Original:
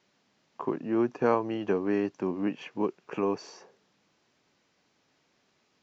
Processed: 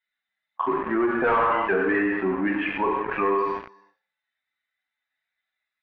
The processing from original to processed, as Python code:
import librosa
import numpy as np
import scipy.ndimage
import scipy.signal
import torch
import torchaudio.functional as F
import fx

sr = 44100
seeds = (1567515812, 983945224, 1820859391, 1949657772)

y = fx.bin_expand(x, sr, power=2.0)
y = fx.highpass(y, sr, hz=740.0, slope=6)
y = fx.peak_eq(y, sr, hz=1600.0, db=10.5, octaves=1.6)
y = fx.echo_feedback(y, sr, ms=106, feedback_pct=32, wet_db=-16)
y = fx.rev_gated(y, sr, seeds[0], gate_ms=320, shape='falling', drr_db=0.5)
y = fx.leveller(y, sr, passes=5)
y = scipy.signal.sosfilt(scipy.signal.butter(4, 2100.0, 'lowpass', fs=sr, output='sos'), y)
y = fx.env_flatten(y, sr, amount_pct=50)
y = y * librosa.db_to_amplitude(-7.5)